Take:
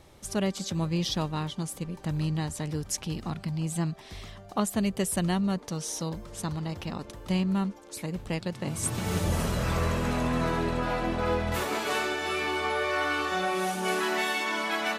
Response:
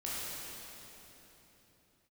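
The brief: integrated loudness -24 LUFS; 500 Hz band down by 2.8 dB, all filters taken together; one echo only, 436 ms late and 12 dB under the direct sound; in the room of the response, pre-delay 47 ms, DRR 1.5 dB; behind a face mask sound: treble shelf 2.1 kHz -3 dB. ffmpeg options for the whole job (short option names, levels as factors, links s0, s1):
-filter_complex "[0:a]equalizer=f=500:t=o:g=-3.5,aecho=1:1:436:0.251,asplit=2[s0][s1];[1:a]atrim=start_sample=2205,adelay=47[s2];[s1][s2]afir=irnorm=-1:irlink=0,volume=0.531[s3];[s0][s3]amix=inputs=2:normalize=0,highshelf=f=2100:g=-3,volume=1.68"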